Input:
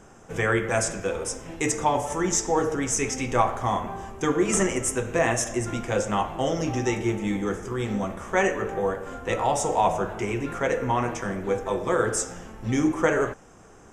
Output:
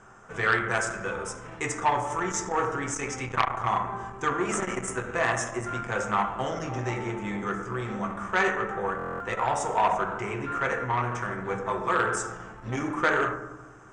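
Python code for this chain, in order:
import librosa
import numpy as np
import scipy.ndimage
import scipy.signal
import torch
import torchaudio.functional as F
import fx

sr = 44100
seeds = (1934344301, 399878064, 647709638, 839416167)

y = scipy.signal.sosfilt(scipy.signal.cheby1(6, 1.0, 9400.0, 'lowpass', fs=sr, output='sos'), x)
y = fx.peak_eq(y, sr, hz=1300.0, db=12.5, octaves=1.2)
y = fx.rev_fdn(y, sr, rt60_s=1.0, lf_ratio=1.55, hf_ratio=0.35, size_ms=46.0, drr_db=5.0)
y = fx.buffer_glitch(y, sr, at_s=(8.97,), block=1024, repeats=9)
y = fx.transformer_sat(y, sr, knee_hz=1700.0)
y = y * librosa.db_to_amplitude(-6.5)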